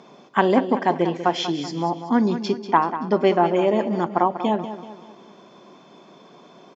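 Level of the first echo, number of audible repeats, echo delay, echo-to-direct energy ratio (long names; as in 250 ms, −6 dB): −11.5 dB, 4, 191 ms, −10.5 dB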